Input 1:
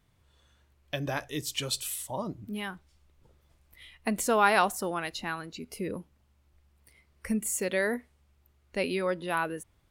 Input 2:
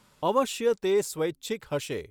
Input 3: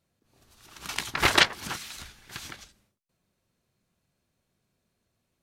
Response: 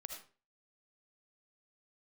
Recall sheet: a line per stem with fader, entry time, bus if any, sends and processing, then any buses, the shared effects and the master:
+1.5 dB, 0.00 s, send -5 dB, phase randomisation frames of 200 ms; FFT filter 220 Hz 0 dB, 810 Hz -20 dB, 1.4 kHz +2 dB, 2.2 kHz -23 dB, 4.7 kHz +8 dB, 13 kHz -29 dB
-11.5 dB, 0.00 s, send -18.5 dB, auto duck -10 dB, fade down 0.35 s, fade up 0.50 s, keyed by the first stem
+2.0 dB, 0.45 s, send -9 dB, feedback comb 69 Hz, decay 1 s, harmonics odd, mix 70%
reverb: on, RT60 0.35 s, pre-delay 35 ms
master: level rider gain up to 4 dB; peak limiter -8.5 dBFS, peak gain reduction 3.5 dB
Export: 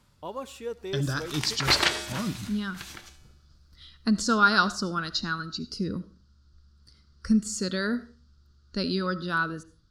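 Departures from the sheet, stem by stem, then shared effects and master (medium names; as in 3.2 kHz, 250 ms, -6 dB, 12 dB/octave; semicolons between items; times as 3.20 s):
stem 1: missing phase randomisation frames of 200 ms; stem 2 -11.5 dB -> -5.5 dB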